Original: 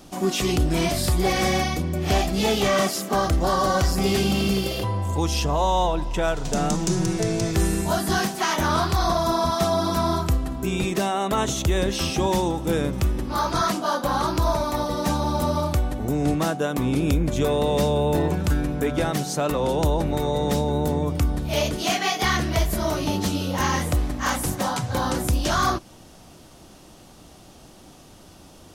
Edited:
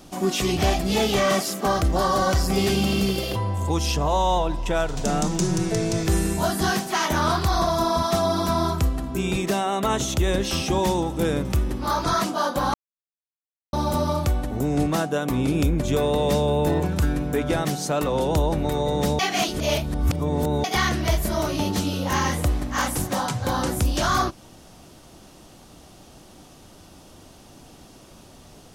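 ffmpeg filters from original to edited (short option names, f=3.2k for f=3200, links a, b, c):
-filter_complex "[0:a]asplit=6[a][b][c][d][e][f];[a]atrim=end=0.572[g];[b]atrim=start=2.048:end=14.22,asetpts=PTS-STARTPTS,afade=t=out:st=12.168:d=0.004:c=hsin[h];[c]atrim=start=14.22:end=15.21,asetpts=PTS-STARTPTS,volume=0[i];[d]atrim=start=15.21:end=20.672,asetpts=PTS-STARTPTS,afade=t=in:d=0.004:c=hsin[j];[e]atrim=start=20.668:end=22.122,asetpts=PTS-STARTPTS,areverse[k];[f]atrim=start=22.118[l];[h][i][j]concat=n=3:v=0:a=1[m];[g][m]acrossfade=d=0.004:c1=hsin:c2=hsin[n];[n][k]acrossfade=d=0.004:c1=hsin:c2=hsin[o];[o][l]acrossfade=d=0.004:c1=hsin:c2=hsin"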